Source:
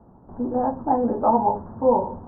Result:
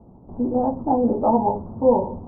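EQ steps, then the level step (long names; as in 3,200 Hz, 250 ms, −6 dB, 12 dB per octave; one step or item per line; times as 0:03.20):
Gaussian smoothing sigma 9.3 samples
+4.0 dB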